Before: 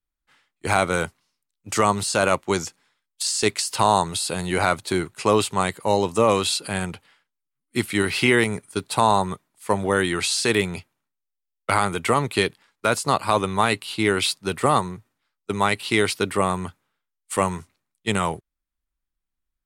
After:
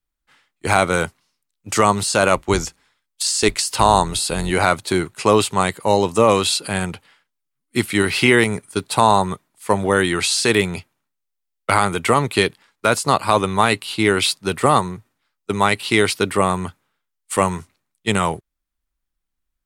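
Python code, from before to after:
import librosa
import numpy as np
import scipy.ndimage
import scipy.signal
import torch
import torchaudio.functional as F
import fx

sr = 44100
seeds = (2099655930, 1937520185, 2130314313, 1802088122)

y = fx.octave_divider(x, sr, octaves=2, level_db=-3.0, at=(2.35, 4.51))
y = y * 10.0 ** (4.0 / 20.0)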